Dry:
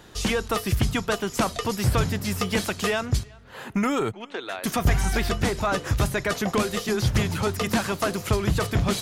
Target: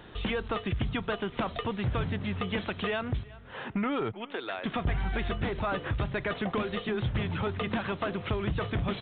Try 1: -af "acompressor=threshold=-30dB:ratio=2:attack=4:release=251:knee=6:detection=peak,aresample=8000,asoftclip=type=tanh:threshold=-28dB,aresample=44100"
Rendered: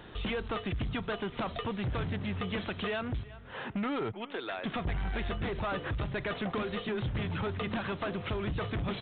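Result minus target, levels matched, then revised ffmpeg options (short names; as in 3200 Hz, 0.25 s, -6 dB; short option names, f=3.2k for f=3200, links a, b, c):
soft clip: distortion +18 dB
-af "acompressor=threshold=-30dB:ratio=2:attack=4:release=251:knee=6:detection=peak,aresample=8000,asoftclip=type=tanh:threshold=-16dB,aresample=44100"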